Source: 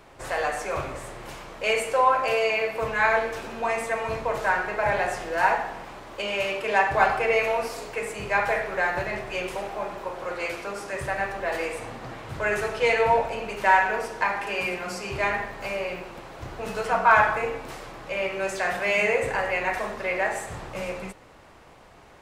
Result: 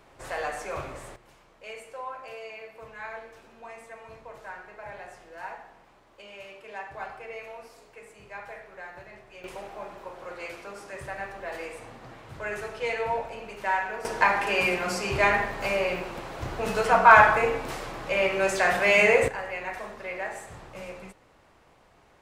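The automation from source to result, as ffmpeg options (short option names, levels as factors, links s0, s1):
-af "asetnsamples=n=441:p=0,asendcmd='1.16 volume volume -17.5dB;9.44 volume volume -8dB;14.05 volume volume 3.5dB;19.28 volume volume -8dB',volume=0.562"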